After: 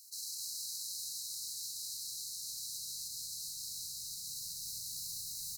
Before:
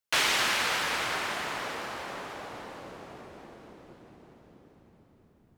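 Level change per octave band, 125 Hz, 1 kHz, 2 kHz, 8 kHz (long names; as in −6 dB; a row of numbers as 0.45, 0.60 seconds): −13.0 dB, below −40 dB, below −40 dB, +1.0 dB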